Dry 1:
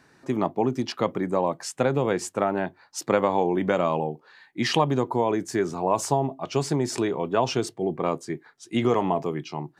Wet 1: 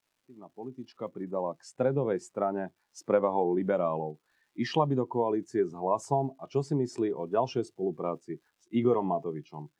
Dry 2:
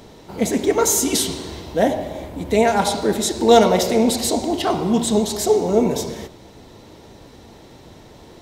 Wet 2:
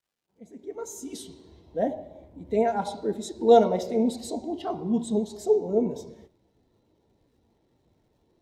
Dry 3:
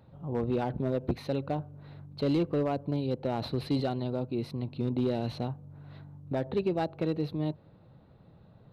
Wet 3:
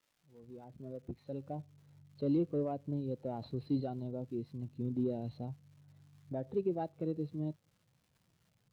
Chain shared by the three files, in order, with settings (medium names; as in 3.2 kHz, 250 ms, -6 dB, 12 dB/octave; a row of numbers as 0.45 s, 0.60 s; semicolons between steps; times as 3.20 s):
fade-in on the opening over 1.76 s; crackle 450 per s -36 dBFS; spectral contrast expander 1.5:1; trim -5 dB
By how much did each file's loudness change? -5.0 LU, -7.5 LU, -6.5 LU